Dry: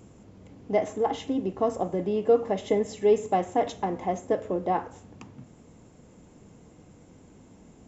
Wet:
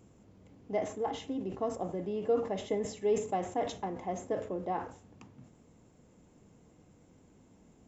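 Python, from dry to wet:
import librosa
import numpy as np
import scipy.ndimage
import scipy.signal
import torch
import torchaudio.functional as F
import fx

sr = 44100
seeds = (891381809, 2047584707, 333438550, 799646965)

y = fx.sustainer(x, sr, db_per_s=110.0)
y = F.gain(torch.from_numpy(y), -8.5).numpy()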